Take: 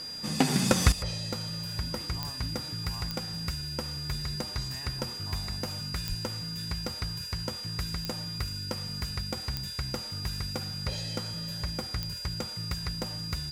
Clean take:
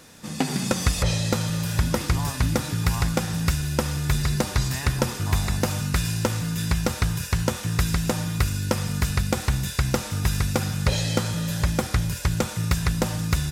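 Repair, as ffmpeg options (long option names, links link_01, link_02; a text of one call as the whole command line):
ffmpeg -i in.wav -filter_complex "[0:a]adeclick=threshold=4,bandreject=frequency=4800:width=30,asplit=3[link_01][link_02][link_03];[link_01]afade=type=out:start_time=6.08:duration=0.02[link_04];[link_02]highpass=frequency=140:width=0.5412,highpass=frequency=140:width=1.3066,afade=type=in:start_time=6.08:duration=0.02,afade=type=out:start_time=6.2:duration=0.02[link_05];[link_03]afade=type=in:start_time=6.2:duration=0.02[link_06];[link_04][link_05][link_06]amix=inputs=3:normalize=0,asetnsamples=nb_out_samples=441:pad=0,asendcmd='0.92 volume volume 12dB',volume=0dB" out.wav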